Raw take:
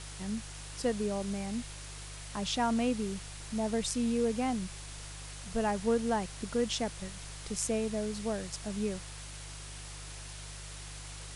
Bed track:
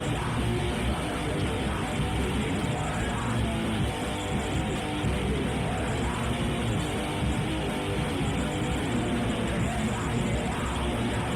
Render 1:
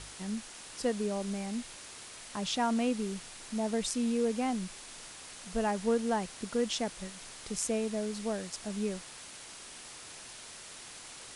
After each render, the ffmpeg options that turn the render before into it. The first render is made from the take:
-af "bandreject=f=50:t=h:w=4,bandreject=f=100:t=h:w=4,bandreject=f=150:t=h:w=4"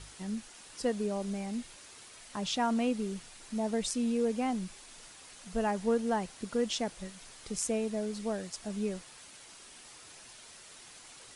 -af "afftdn=nr=6:nf=-48"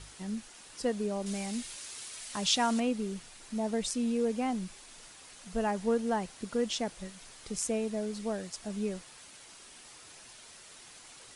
-filter_complex "[0:a]asettb=1/sr,asplit=3[a][b][c];[a]atrim=end=1.264[d];[b]atrim=start=1.26:end=2.8,asetpts=PTS-STARTPTS,afade=t=in:d=0.004:c=qsin,afade=t=out:st=1.536:d=0.004:c=qsin,highshelf=f=2.2k:g=10[e];[c]atrim=start=2.796[f];[d][e]acrossfade=d=0.004:c1=hsin:c2=qsin[g];[g][f]acrossfade=d=0.004:c1=qsin:c2=hsin"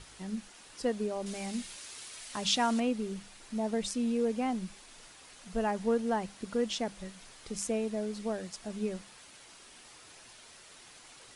-af "equalizer=f=8.5k:t=o:w=1.4:g=-3.5,bandreject=f=50:t=h:w=6,bandreject=f=100:t=h:w=6,bandreject=f=150:t=h:w=6,bandreject=f=200:t=h:w=6"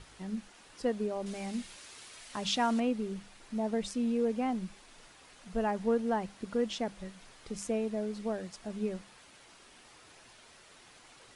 -af "highshelf=f=3.9k:g=-7.5"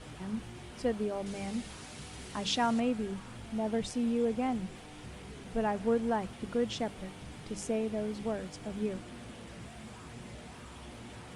-filter_complex "[1:a]volume=-19.5dB[a];[0:a][a]amix=inputs=2:normalize=0"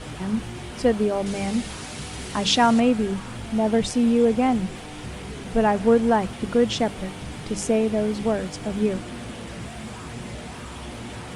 -af "volume=11.5dB"

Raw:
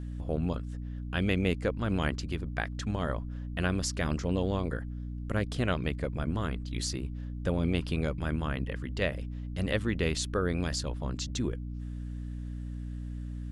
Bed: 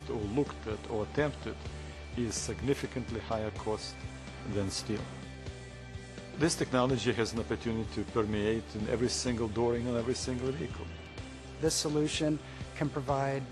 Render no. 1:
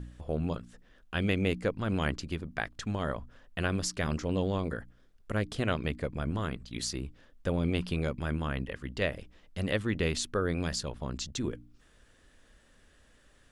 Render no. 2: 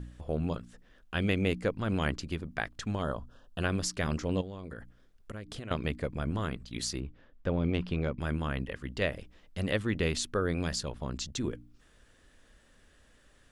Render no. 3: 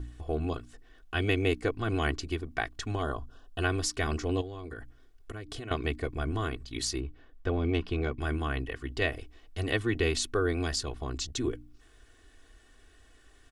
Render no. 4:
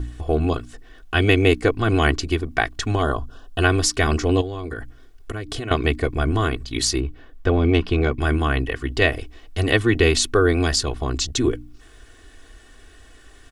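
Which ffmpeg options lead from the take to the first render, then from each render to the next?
-af "bandreject=f=60:t=h:w=4,bandreject=f=120:t=h:w=4,bandreject=f=180:t=h:w=4,bandreject=f=240:t=h:w=4,bandreject=f=300:t=h:w=4"
-filter_complex "[0:a]asettb=1/sr,asplit=3[a][b][c];[a]atrim=end=3.024[d];[b]atrim=start=3.02:end=3.62,asetpts=PTS-STARTPTS,afade=t=in:d=0.004:c=qsin,afade=t=out:st=0.596:d=0.004:c=qsin,asuperstop=centerf=2100:order=4:qfactor=1.8[e];[c]atrim=start=3.616[f];[d][e]acrossfade=d=0.004:c1=hsin:c2=qsin[g];[g][f]acrossfade=d=0.004:c1=qsin:c2=hsin,asettb=1/sr,asplit=3[h][i][j];[h]atrim=end=4.414[k];[i]atrim=start=4.41:end=5.71,asetpts=PTS-STARTPTS,afade=t=in:d=0.004:c=qsin,afade=t=out:st=1.296:d=0.004:c=qsin,acompressor=threshold=-37dB:ratio=8:attack=3.2:release=140:knee=1:detection=peak[l];[j]atrim=start=5.706[m];[k][l]acrossfade=d=0.004:c1=hsin:c2=qsin[n];[n][m]acrossfade=d=0.004:c1=qsin:c2=hsin,asettb=1/sr,asplit=3[o][p][q];[o]atrim=end=7.004[r];[p]atrim=start=7:end=8.19,asetpts=PTS-STARTPTS,afade=t=in:d=0.004:c=qsin,afade=t=out:st=1.186:d=0.004:c=qsin,adynamicsmooth=sensitivity=1:basefreq=3.6k[s];[q]atrim=start=8.186[t];[r][s]acrossfade=d=0.004:c1=hsin:c2=qsin[u];[u][t]acrossfade=d=0.004:c1=qsin:c2=hsin"
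-af "aecho=1:1:2.7:0.85"
-af "volume=11dB"

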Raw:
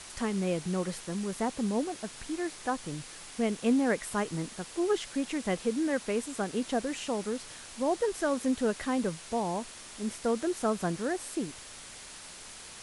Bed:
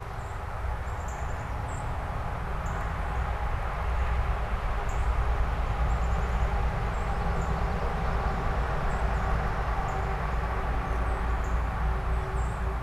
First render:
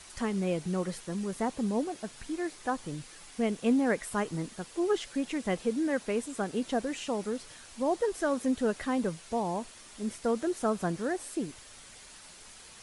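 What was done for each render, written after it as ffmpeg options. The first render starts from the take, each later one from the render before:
-af "afftdn=nr=6:nf=-47"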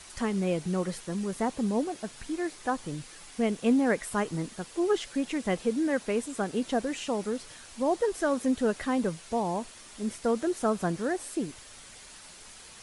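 -af "volume=2dB"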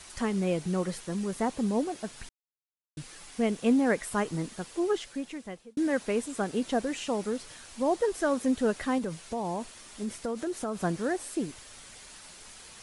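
-filter_complex "[0:a]asettb=1/sr,asplit=3[a][b][c];[a]atrim=end=8.984[d];[b]atrim=start=8.98:end=10.78,asetpts=PTS-STARTPTS,afade=t=in:d=0.004:c=qsin,afade=t=out:st=1.796:d=0.004:c=qsin,acompressor=threshold=-28dB:ratio=6:attack=3.2:release=140:knee=1:detection=peak[e];[c]atrim=start=10.776[f];[d][e]acrossfade=d=0.004:c1=hsin:c2=qsin[g];[g][f]acrossfade=d=0.004:c1=qsin:c2=hsin,asplit=4[h][i][j][k];[h]atrim=end=2.29,asetpts=PTS-STARTPTS,afade=t=out:st=2.286:d=0.004:c=hsin[l];[i]atrim=start=2.29:end=2.97,asetpts=PTS-STARTPTS,volume=0[m];[j]atrim=start=2.97:end=5.77,asetpts=PTS-STARTPTS,afade=t=in:d=0.004:c=hsin,afade=t=out:st=1.72:d=1.08[n];[k]atrim=start=5.77,asetpts=PTS-STARTPTS,afade=t=in:d=0.004:c=hsin[o];[l][m][n][o]concat=n=4:v=0:a=1"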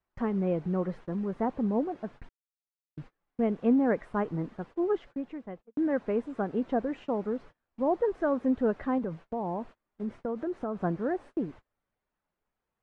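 -af "lowpass=1.3k,agate=range=-30dB:threshold=-45dB:ratio=16:detection=peak"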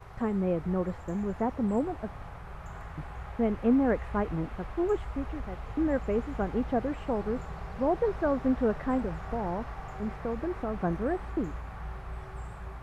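-filter_complex "[1:a]volume=-11dB[a];[0:a][a]amix=inputs=2:normalize=0"

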